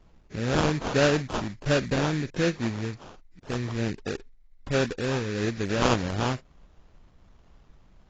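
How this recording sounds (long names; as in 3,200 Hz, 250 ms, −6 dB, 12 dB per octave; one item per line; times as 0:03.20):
phaser sweep stages 2, 1.3 Hz, lowest notch 740–1,600 Hz
aliases and images of a low sample rate 2,100 Hz, jitter 20%
AAC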